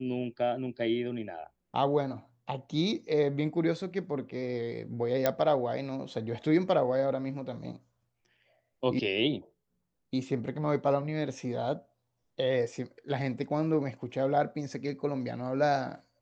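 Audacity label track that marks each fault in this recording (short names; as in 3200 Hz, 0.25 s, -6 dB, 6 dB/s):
5.260000	5.260000	pop -11 dBFS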